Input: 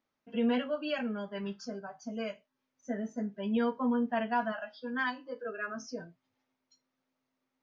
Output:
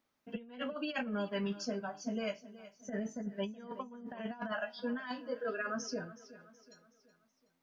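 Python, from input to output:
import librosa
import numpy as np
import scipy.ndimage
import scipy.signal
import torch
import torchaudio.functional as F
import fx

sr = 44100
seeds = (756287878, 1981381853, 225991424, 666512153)

y = fx.high_shelf(x, sr, hz=4500.0, db=4.0)
y = fx.over_compress(y, sr, threshold_db=-36.0, ratio=-0.5)
y = fx.echo_feedback(y, sr, ms=373, feedback_pct=45, wet_db=-16.5)
y = y * librosa.db_to_amplitude(-1.5)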